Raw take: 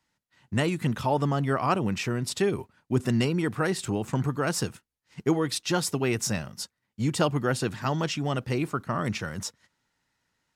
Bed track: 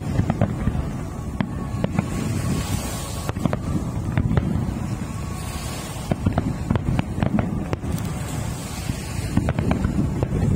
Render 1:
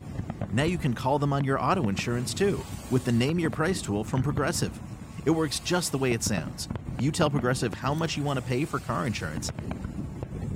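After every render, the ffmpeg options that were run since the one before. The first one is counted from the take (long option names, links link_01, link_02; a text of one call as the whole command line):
ffmpeg -i in.wav -i bed.wav -filter_complex "[1:a]volume=-13dB[link_01];[0:a][link_01]amix=inputs=2:normalize=0" out.wav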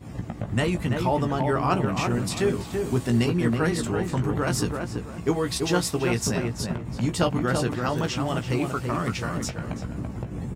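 ffmpeg -i in.wav -filter_complex "[0:a]asplit=2[link_01][link_02];[link_02]adelay=17,volume=-7dB[link_03];[link_01][link_03]amix=inputs=2:normalize=0,asplit=2[link_04][link_05];[link_05]adelay=334,lowpass=frequency=1700:poles=1,volume=-4dB,asplit=2[link_06][link_07];[link_07]adelay=334,lowpass=frequency=1700:poles=1,volume=0.31,asplit=2[link_08][link_09];[link_09]adelay=334,lowpass=frequency=1700:poles=1,volume=0.31,asplit=2[link_10][link_11];[link_11]adelay=334,lowpass=frequency=1700:poles=1,volume=0.31[link_12];[link_06][link_08][link_10][link_12]amix=inputs=4:normalize=0[link_13];[link_04][link_13]amix=inputs=2:normalize=0" out.wav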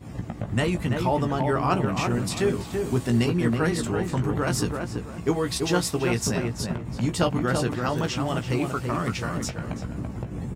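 ffmpeg -i in.wav -af anull out.wav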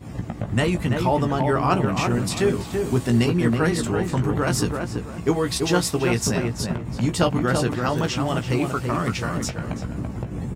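ffmpeg -i in.wav -af "volume=3dB" out.wav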